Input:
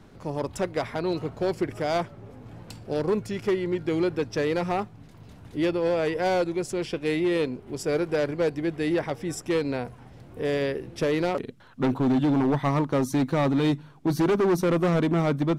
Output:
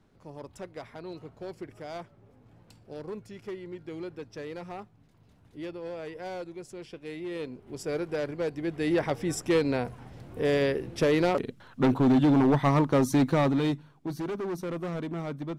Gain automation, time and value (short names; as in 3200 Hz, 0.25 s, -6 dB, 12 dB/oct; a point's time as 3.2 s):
7.16 s -13.5 dB
7.75 s -6 dB
8.51 s -6 dB
9.08 s +1 dB
13.29 s +1 dB
14.2 s -11 dB